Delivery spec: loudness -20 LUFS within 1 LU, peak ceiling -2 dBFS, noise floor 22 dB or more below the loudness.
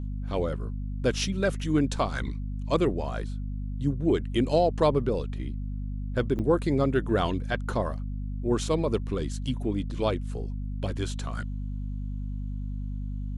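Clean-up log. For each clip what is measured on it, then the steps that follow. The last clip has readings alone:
dropouts 1; longest dropout 6.4 ms; hum 50 Hz; harmonics up to 250 Hz; hum level -30 dBFS; loudness -29.0 LUFS; peak -10.0 dBFS; loudness target -20.0 LUFS
-> interpolate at 6.39, 6.4 ms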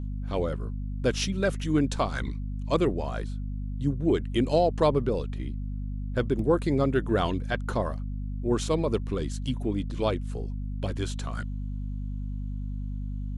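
dropouts 0; hum 50 Hz; harmonics up to 250 Hz; hum level -30 dBFS
-> notches 50/100/150/200/250 Hz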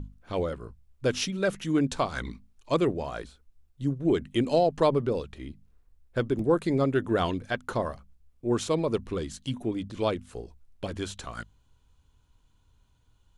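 hum none; loudness -29.0 LUFS; peak -10.0 dBFS; loudness target -20.0 LUFS
-> gain +9 dB; limiter -2 dBFS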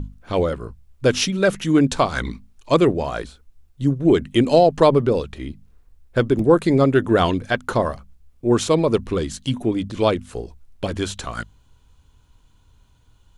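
loudness -20.0 LUFS; peak -2.0 dBFS; noise floor -56 dBFS

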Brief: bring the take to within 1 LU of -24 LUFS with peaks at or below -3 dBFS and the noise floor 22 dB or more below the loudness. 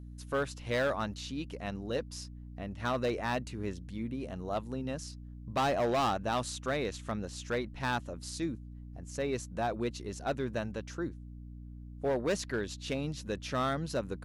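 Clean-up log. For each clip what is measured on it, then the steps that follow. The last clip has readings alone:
clipped 1.4%; flat tops at -25.0 dBFS; hum 60 Hz; harmonics up to 300 Hz; hum level -44 dBFS; loudness -35.0 LUFS; peak -25.0 dBFS; loudness target -24.0 LUFS
-> clip repair -25 dBFS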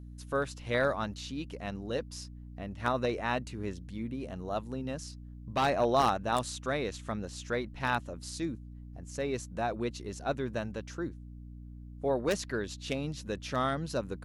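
clipped 0.0%; hum 60 Hz; harmonics up to 300 Hz; hum level -44 dBFS
-> de-hum 60 Hz, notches 5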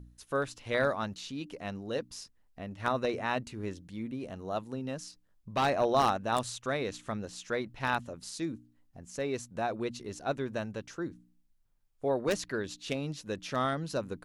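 hum none; loudness -34.0 LUFS; peak -15.0 dBFS; loudness target -24.0 LUFS
-> gain +10 dB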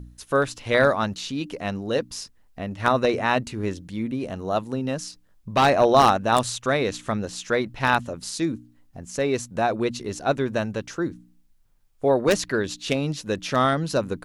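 loudness -24.0 LUFS; peak -5.0 dBFS; noise floor -58 dBFS

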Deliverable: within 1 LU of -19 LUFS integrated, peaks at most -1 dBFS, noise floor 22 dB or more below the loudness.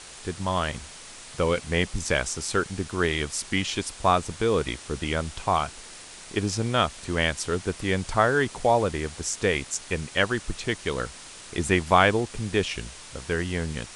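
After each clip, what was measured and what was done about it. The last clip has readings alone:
noise floor -44 dBFS; noise floor target -48 dBFS; loudness -26.0 LUFS; peak -3.5 dBFS; loudness target -19.0 LUFS
-> noise print and reduce 6 dB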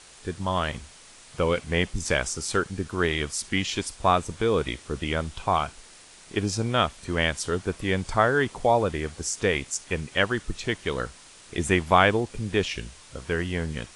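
noise floor -50 dBFS; loudness -26.0 LUFS; peak -3.5 dBFS; loudness target -19.0 LUFS
-> gain +7 dB; limiter -1 dBFS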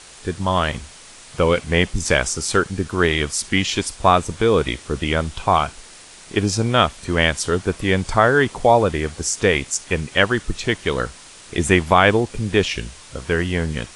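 loudness -19.5 LUFS; peak -1.0 dBFS; noise floor -43 dBFS

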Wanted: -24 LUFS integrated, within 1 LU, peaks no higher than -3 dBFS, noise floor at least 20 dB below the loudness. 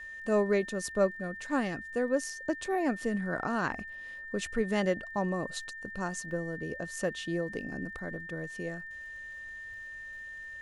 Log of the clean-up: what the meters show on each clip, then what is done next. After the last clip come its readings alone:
ticks 51/s; steady tone 1800 Hz; tone level -41 dBFS; loudness -33.5 LUFS; peak -15.0 dBFS; loudness target -24.0 LUFS
-> de-click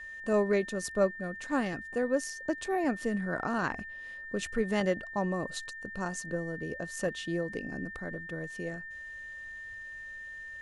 ticks 0.094/s; steady tone 1800 Hz; tone level -41 dBFS
-> notch 1800 Hz, Q 30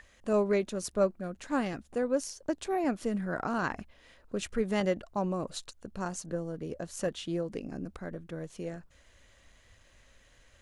steady tone none; loudness -33.5 LUFS; peak -15.5 dBFS; loudness target -24.0 LUFS
-> gain +9.5 dB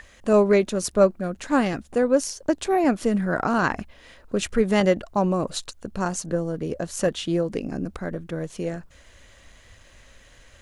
loudness -24.0 LUFS; peak -6.0 dBFS; noise floor -52 dBFS

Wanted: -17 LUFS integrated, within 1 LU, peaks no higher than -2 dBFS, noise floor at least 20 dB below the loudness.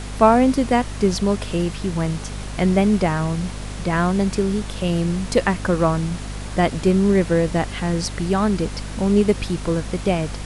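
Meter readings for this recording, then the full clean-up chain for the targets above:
hum 50 Hz; harmonics up to 250 Hz; hum level -29 dBFS; noise floor -31 dBFS; noise floor target -41 dBFS; loudness -20.5 LUFS; peak -2.5 dBFS; loudness target -17.0 LUFS
-> de-hum 50 Hz, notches 5; noise print and reduce 10 dB; gain +3.5 dB; limiter -2 dBFS

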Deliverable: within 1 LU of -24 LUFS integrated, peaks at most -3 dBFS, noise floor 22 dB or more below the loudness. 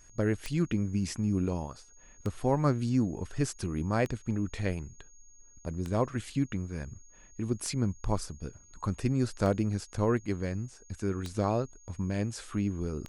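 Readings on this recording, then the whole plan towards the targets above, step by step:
clicks 8; steady tone 6600 Hz; tone level -57 dBFS; loudness -32.0 LUFS; peak -12.0 dBFS; loudness target -24.0 LUFS
-> de-click; notch 6600 Hz, Q 30; gain +8 dB

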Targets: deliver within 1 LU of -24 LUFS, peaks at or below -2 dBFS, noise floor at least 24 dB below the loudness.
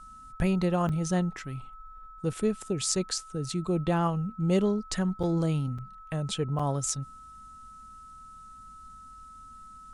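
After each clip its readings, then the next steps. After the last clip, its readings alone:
dropouts 4; longest dropout 5.3 ms; steady tone 1300 Hz; tone level -46 dBFS; loudness -29.5 LUFS; peak -9.5 dBFS; loudness target -24.0 LUFS
-> interpolate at 0.89/5.23/5.78/6.59, 5.3 ms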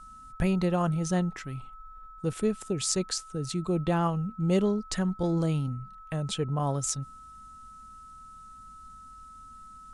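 dropouts 0; steady tone 1300 Hz; tone level -46 dBFS
-> notch 1300 Hz, Q 30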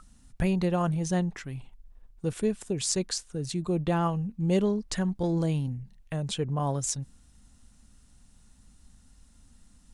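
steady tone none; loudness -29.5 LUFS; peak -9.5 dBFS; loudness target -24.0 LUFS
-> gain +5.5 dB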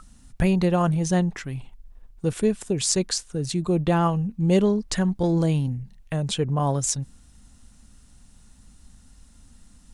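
loudness -24.0 LUFS; peak -4.0 dBFS; noise floor -53 dBFS

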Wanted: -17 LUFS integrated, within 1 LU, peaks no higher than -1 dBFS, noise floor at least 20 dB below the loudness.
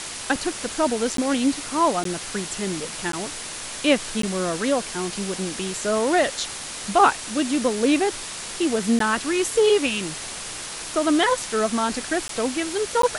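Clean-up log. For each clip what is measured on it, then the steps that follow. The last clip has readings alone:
dropouts 7; longest dropout 13 ms; noise floor -34 dBFS; noise floor target -43 dBFS; loudness -23.0 LUFS; peak -4.5 dBFS; loudness target -17.0 LUFS
-> interpolate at 1.17/2.04/3.12/4.22/8.99/12.28/13.02, 13 ms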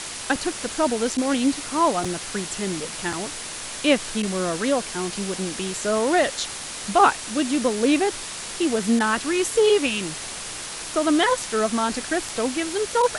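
dropouts 0; noise floor -34 dBFS; noise floor target -43 dBFS
-> denoiser 9 dB, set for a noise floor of -34 dBFS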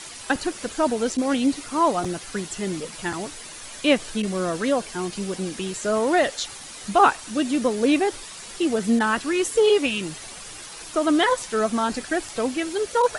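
noise floor -39 dBFS; noise floor target -44 dBFS
-> denoiser 6 dB, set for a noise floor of -39 dBFS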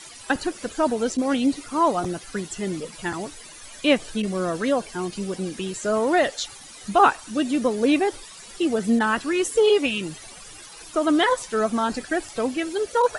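noise floor -43 dBFS; noise floor target -44 dBFS
-> denoiser 6 dB, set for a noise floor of -43 dBFS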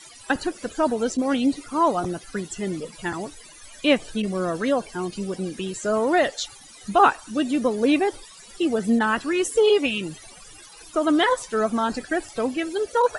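noise floor -46 dBFS; loudness -23.5 LUFS; peak -5.5 dBFS; loudness target -17.0 LUFS
-> gain +6.5 dB; limiter -1 dBFS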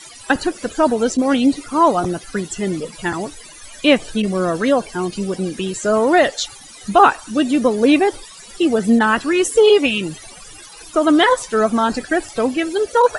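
loudness -17.0 LUFS; peak -1.0 dBFS; noise floor -40 dBFS

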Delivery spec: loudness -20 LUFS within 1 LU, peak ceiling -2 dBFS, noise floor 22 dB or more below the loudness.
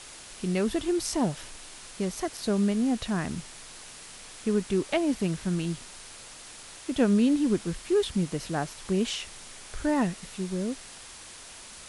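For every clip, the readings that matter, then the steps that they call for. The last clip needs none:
noise floor -46 dBFS; noise floor target -51 dBFS; loudness -28.5 LUFS; peak -11.0 dBFS; loudness target -20.0 LUFS
-> denoiser 6 dB, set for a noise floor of -46 dBFS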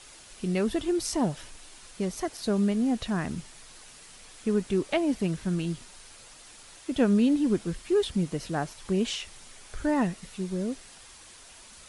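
noise floor -50 dBFS; noise floor target -51 dBFS
-> denoiser 6 dB, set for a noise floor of -50 dBFS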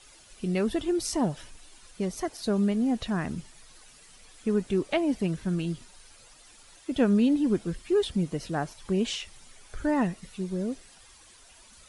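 noise floor -54 dBFS; loudness -28.5 LUFS; peak -11.5 dBFS; loudness target -20.0 LUFS
-> gain +8.5 dB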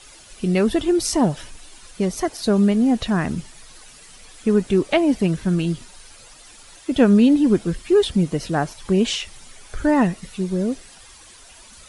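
loudness -20.0 LUFS; peak -3.0 dBFS; noise floor -46 dBFS

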